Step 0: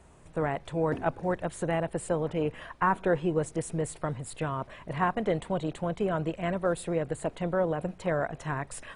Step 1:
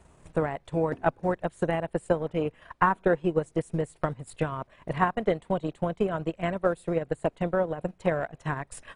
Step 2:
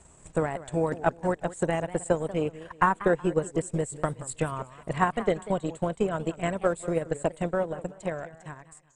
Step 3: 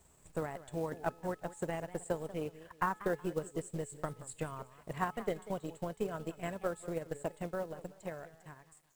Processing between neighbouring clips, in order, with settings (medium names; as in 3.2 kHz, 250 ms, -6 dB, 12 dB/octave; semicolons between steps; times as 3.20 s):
transient shaper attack +7 dB, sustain -11 dB; trim -1 dB
fade out at the end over 1.66 s; resonant low-pass 7.9 kHz, resonance Q 7.2; modulated delay 185 ms, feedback 33%, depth 210 cents, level -16 dB
feedback comb 430 Hz, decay 0.49 s, mix 60%; companded quantiser 6-bit; trim -3 dB